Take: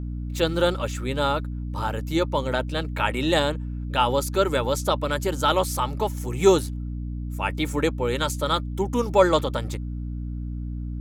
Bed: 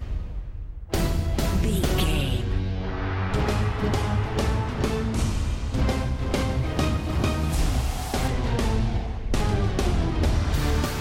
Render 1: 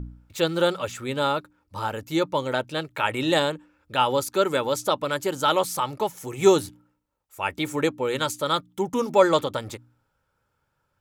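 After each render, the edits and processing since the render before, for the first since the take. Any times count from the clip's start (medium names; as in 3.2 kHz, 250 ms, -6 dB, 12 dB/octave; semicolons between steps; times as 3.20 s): de-hum 60 Hz, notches 5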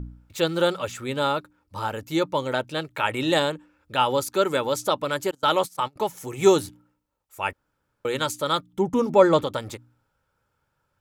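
5.31–5.96 s: gate -30 dBFS, range -28 dB; 7.53–8.05 s: room tone; 8.73–9.44 s: tilt EQ -2 dB/octave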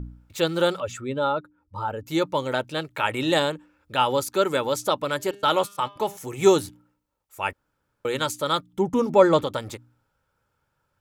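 0.80–2.06 s: spectral contrast enhancement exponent 1.5; 5.16–6.17 s: de-hum 201.3 Hz, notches 30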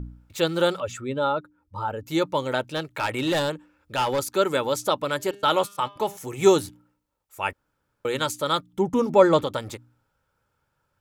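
2.61–4.19 s: hard clipper -19.5 dBFS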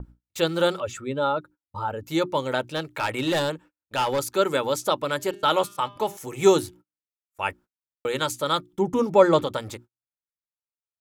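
hum notches 60/120/180/240/300/360 Hz; gate -45 dBFS, range -38 dB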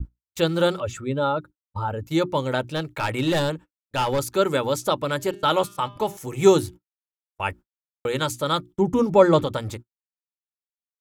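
gate -40 dBFS, range -25 dB; bass shelf 160 Hz +12 dB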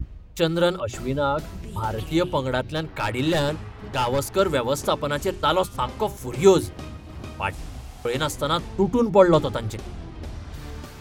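add bed -13 dB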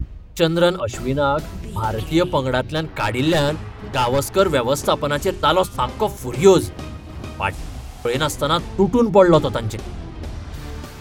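trim +4.5 dB; peak limiter -1 dBFS, peak gain reduction 3 dB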